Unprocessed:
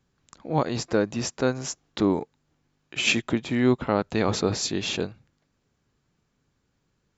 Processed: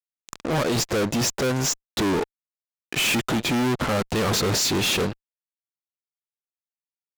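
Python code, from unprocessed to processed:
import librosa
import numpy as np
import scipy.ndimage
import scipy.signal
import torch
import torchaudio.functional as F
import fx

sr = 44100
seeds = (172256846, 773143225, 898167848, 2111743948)

y = fx.low_shelf(x, sr, hz=71.0, db=-4.5)
y = fx.fuzz(y, sr, gain_db=40.0, gate_db=-46.0)
y = F.gain(torch.from_numpy(y), -7.5).numpy()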